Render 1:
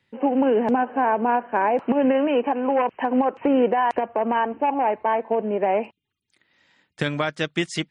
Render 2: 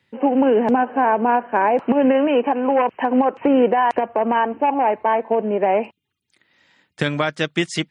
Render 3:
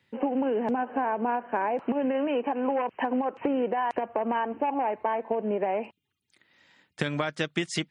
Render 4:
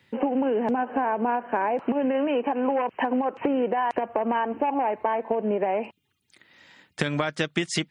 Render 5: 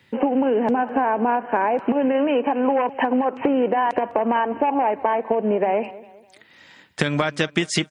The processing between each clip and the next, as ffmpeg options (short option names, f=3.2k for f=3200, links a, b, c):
-af "highpass=60,volume=3.5dB"
-af "acompressor=threshold=-21dB:ratio=6,volume=-3dB"
-af "acompressor=threshold=-37dB:ratio=1.5,volume=7.5dB"
-af "aecho=1:1:203|406|609:0.112|0.0426|0.0162,volume=4.5dB"